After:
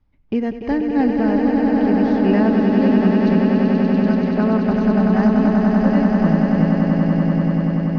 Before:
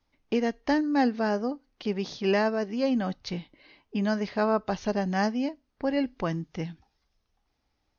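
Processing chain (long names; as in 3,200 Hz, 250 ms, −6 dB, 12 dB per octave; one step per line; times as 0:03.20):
bass and treble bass +14 dB, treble −15 dB
echo that builds up and dies away 96 ms, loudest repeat 8, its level −6 dB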